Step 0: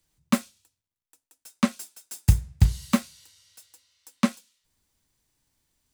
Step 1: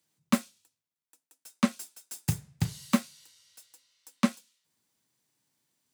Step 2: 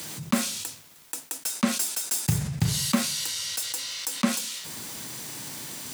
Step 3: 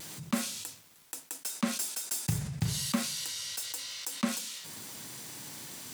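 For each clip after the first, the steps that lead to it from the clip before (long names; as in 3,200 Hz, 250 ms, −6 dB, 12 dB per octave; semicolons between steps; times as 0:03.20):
high-pass filter 130 Hz 24 dB per octave; level −2.5 dB
envelope flattener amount 70%
pitch vibrato 0.34 Hz 10 cents; level −6.5 dB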